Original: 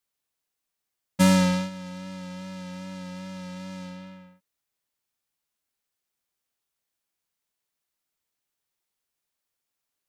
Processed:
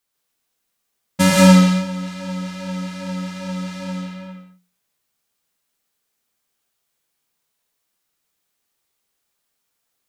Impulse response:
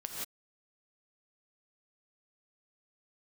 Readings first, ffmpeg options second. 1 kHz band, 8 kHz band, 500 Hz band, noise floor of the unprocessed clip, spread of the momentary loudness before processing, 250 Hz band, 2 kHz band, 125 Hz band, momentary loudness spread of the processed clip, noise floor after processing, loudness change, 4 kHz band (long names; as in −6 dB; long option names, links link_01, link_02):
+9.0 dB, +9.5 dB, +10.0 dB, −84 dBFS, 21 LU, +9.5 dB, +9.5 dB, +9.5 dB, 19 LU, −75 dBFS, +9.0 dB, +9.0 dB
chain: -filter_complex "[0:a]bandreject=frequency=60:width_type=h:width=6,bandreject=frequency=120:width_type=h:width=6,bandreject=frequency=180:width_type=h:width=6[link_01];[1:a]atrim=start_sample=2205[link_02];[link_01][link_02]afir=irnorm=-1:irlink=0,volume=8.5dB"